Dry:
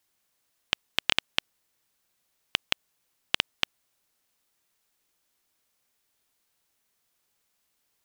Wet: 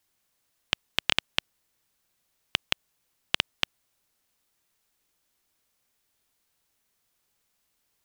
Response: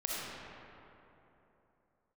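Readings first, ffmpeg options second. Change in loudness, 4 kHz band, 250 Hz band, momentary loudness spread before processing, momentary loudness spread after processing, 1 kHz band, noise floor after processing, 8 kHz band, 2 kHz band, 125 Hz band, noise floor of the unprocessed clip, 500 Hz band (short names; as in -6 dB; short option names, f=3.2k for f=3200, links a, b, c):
0.0 dB, 0.0 dB, +1.5 dB, 6 LU, 6 LU, 0.0 dB, -76 dBFS, 0.0 dB, 0.0 dB, +3.0 dB, -76 dBFS, +0.5 dB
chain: -af "lowshelf=f=150:g=5"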